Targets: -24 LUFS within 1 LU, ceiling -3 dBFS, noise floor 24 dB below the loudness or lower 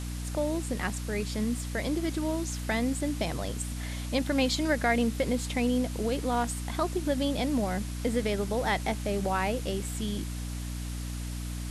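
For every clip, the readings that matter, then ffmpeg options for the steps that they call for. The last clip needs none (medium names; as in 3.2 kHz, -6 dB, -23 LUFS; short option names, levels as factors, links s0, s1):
hum 60 Hz; highest harmonic 300 Hz; hum level -33 dBFS; noise floor -35 dBFS; noise floor target -55 dBFS; loudness -30.5 LUFS; peak level -14.0 dBFS; loudness target -24.0 LUFS
-> -af "bandreject=f=60:t=h:w=4,bandreject=f=120:t=h:w=4,bandreject=f=180:t=h:w=4,bandreject=f=240:t=h:w=4,bandreject=f=300:t=h:w=4"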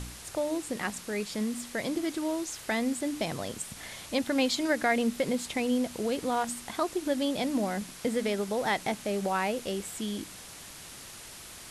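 hum not found; noise floor -46 dBFS; noise floor target -55 dBFS
-> -af "afftdn=nr=9:nf=-46"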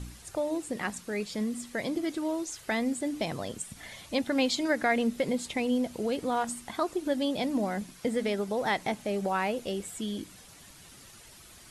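noise floor -52 dBFS; noise floor target -55 dBFS
-> -af "afftdn=nr=6:nf=-52"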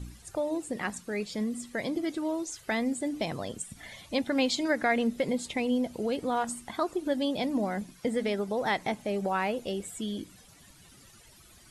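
noise floor -56 dBFS; loudness -31.0 LUFS; peak level -14.5 dBFS; loudness target -24.0 LUFS
-> -af "volume=2.24"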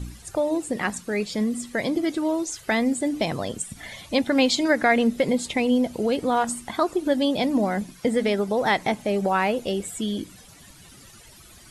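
loudness -24.0 LUFS; peak level -7.5 dBFS; noise floor -49 dBFS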